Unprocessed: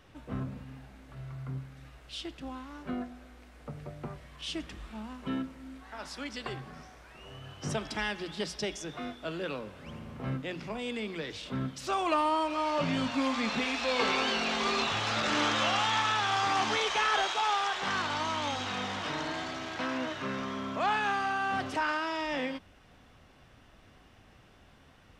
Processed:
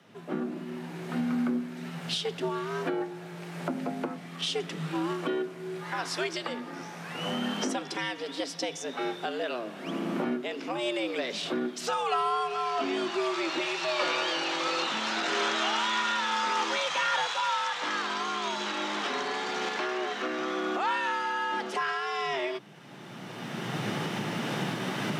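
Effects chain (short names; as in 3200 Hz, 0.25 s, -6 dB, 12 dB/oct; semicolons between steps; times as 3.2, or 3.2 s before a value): recorder AGC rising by 18 dB/s; frequency shift +110 Hz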